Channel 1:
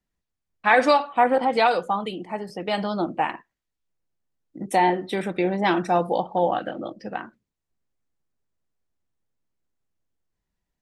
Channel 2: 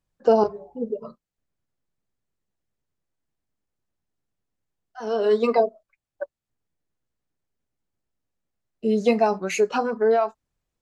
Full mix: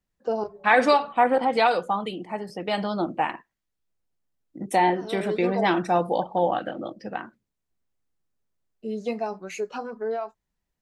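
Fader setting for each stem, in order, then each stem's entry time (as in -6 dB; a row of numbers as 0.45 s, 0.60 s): -1.0 dB, -9.5 dB; 0.00 s, 0.00 s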